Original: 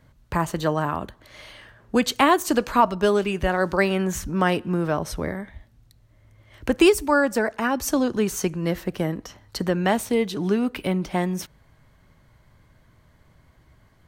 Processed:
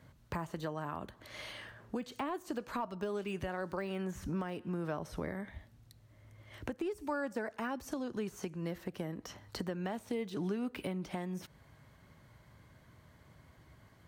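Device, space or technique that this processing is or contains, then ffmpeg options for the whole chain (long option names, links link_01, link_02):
podcast mastering chain: -af "highpass=69,deesser=0.9,acompressor=threshold=-33dB:ratio=4,alimiter=limit=-24dB:level=0:latency=1:release=489,volume=-1.5dB" -ar 48000 -c:a libmp3lame -b:a 112k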